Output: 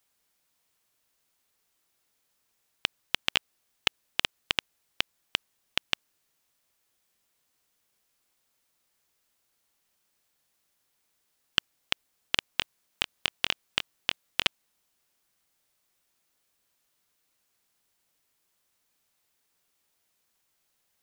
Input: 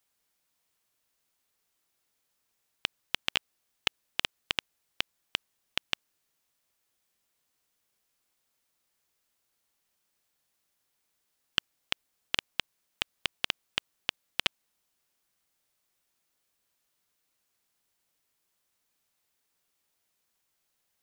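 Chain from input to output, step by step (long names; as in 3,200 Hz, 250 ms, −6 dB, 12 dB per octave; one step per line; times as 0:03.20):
0:12.52–0:14.43: double-tracking delay 23 ms −9.5 dB
level +3 dB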